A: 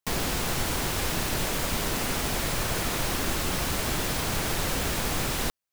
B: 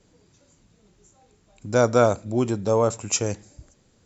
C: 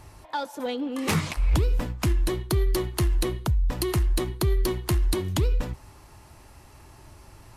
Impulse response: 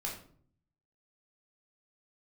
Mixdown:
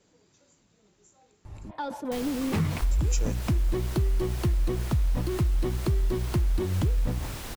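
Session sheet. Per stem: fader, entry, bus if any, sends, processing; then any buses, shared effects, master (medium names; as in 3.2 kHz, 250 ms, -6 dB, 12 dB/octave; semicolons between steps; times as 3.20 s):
-10.5 dB, 2.05 s, no send, none
-2.5 dB, 0.00 s, muted 1.71–2.91 s, no send, bass shelf 130 Hz -11.5 dB
-5.0 dB, 1.45 s, no send, low-pass 2.7 kHz 6 dB/octave; bass shelf 300 Hz +11.5 dB; decay stretcher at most 86 dB/s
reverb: none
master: compression 4:1, threshold -23 dBFS, peak gain reduction 10 dB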